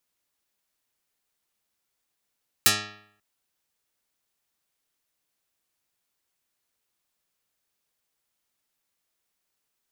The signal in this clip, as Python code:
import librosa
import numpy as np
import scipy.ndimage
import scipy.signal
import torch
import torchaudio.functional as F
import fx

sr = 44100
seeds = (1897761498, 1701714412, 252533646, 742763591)

y = fx.pluck(sr, length_s=0.54, note=44, decay_s=0.67, pick=0.2, brightness='dark')